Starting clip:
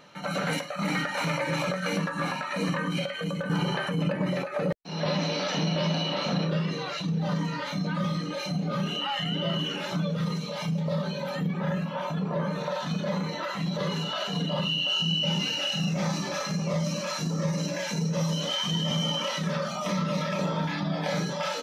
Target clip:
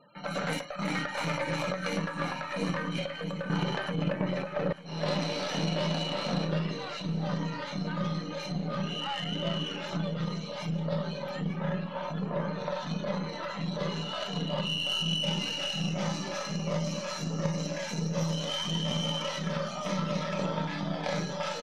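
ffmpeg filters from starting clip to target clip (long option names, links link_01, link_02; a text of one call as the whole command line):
ffmpeg -i in.wav -filter_complex "[0:a]afftfilt=real='re*gte(hypot(re,im),0.00398)':imag='im*gte(hypot(re,im),0.00398)':win_size=1024:overlap=0.75,acrossover=split=790[link_01][link_02];[link_01]crystalizer=i=9.5:c=0[link_03];[link_03][link_02]amix=inputs=2:normalize=0,aeval=exprs='0.178*(cos(1*acos(clip(val(0)/0.178,-1,1)))-cos(1*PI/2))+0.0282*(cos(3*acos(clip(val(0)/0.178,-1,1)))-cos(3*PI/2))+0.00447*(cos(6*acos(clip(val(0)/0.178,-1,1)))-cos(6*PI/2))':channel_layout=same,aecho=1:1:897|1794|2691|3588|4485:0.141|0.0777|0.0427|0.0235|0.0129" out.wav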